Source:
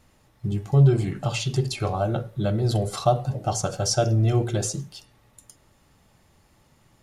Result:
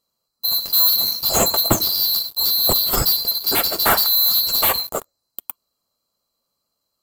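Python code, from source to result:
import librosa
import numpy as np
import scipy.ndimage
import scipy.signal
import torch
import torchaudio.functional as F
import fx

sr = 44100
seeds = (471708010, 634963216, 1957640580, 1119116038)

y = fx.band_swap(x, sr, width_hz=4000)
y = fx.leveller(y, sr, passes=5)
y = fx.band_shelf(y, sr, hz=3200.0, db=-14.0, octaves=2.3)
y = y * librosa.db_to_amplitude(3.5)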